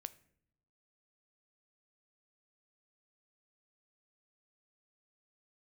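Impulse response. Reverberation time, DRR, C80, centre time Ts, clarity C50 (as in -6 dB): not exponential, 13.5 dB, 21.5 dB, 3 ms, 18.5 dB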